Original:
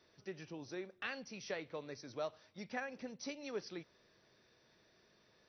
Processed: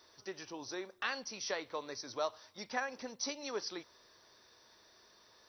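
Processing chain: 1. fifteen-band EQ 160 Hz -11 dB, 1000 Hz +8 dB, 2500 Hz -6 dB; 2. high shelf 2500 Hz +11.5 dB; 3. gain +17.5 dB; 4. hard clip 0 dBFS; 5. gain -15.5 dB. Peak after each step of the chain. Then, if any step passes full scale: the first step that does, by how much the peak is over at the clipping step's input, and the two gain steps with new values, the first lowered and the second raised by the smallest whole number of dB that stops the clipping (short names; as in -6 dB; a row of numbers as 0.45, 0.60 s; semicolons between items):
-25.5, -22.0, -4.5, -4.5, -20.0 dBFS; no overload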